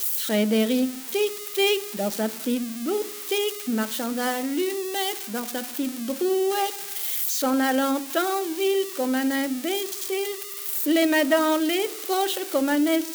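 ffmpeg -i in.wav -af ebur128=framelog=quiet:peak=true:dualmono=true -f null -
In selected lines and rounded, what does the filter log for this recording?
Integrated loudness:
  I:         -21.4 LUFS
  Threshold: -31.4 LUFS
Loudness range:
  LRA:         3.1 LU
  Threshold: -41.8 LUFS
  LRA low:   -23.5 LUFS
  LRA high:  -20.4 LUFS
True peak:
  Peak:      -10.7 dBFS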